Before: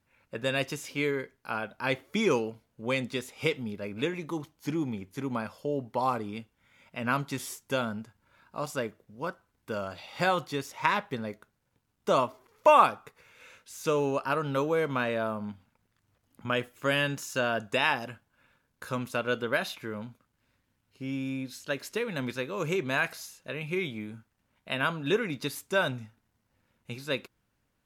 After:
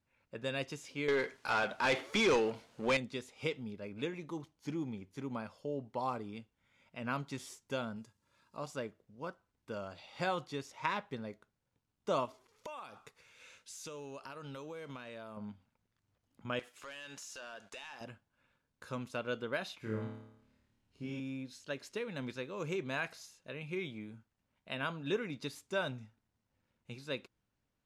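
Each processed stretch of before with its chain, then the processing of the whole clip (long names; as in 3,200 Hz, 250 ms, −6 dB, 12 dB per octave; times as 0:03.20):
0:01.08–0:02.97: mu-law and A-law mismatch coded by mu + mid-hump overdrive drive 21 dB, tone 6,200 Hz, clips at −12.5 dBFS
0:07.96–0:08.57: bass and treble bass 0 dB, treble +12 dB + notch comb filter 750 Hz
0:12.25–0:15.37: high-shelf EQ 2,500 Hz +10 dB + downward compressor 10 to 1, threshold −34 dBFS
0:16.59–0:18.01: high-pass filter 1,300 Hz 6 dB per octave + downward compressor 4 to 1, threshold −47 dBFS + leveller curve on the samples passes 3
0:19.80–0:21.20: low-shelf EQ 190 Hz +6.5 dB + flutter between parallel walls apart 4.7 metres, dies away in 0.78 s
whole clip: low-pass filter 8,000 Hz 12 dB per octave; parametric band 1,600 Hz −2.5 dB 1.4 octaves; level −7.5 dB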